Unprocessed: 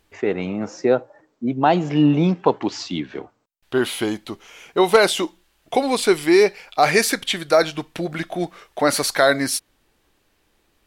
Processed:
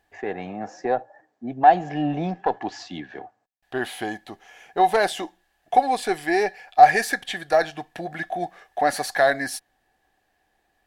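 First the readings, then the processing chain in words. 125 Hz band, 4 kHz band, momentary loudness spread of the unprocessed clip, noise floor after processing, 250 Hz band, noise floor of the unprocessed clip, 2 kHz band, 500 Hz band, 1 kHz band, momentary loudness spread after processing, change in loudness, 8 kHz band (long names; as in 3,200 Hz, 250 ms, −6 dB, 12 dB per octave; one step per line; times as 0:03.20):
−10.0 dB, −9.5 dB, 13 LU, −71 dBFS, −9.5 dB, −66 dBFS, −2.0 dB, −5.5 dB, +4.0 dB, 18 LU, −2.5 dB, −9.5 dB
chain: one-sided soft clipper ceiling −6.5 dBFS
hollow resonant body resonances 750/1,700 Hz, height 18 dB, ringing for 35 ms
level −9 dB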